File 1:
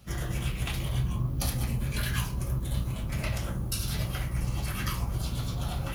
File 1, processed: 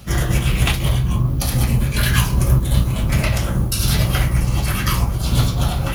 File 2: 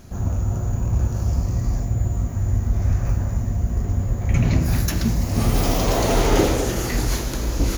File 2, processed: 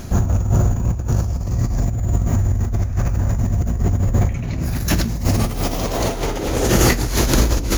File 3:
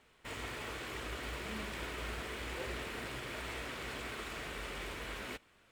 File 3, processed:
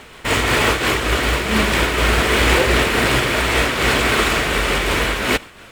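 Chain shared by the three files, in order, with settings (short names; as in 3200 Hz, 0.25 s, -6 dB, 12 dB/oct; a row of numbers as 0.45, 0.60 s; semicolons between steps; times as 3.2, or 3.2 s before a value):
negative-ratio compressor -25 dBFS, ratio -1; noise-modulated level, depth 65%; normalise peaks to -2 dBFS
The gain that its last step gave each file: +17.0, +10.5, +29.0 dB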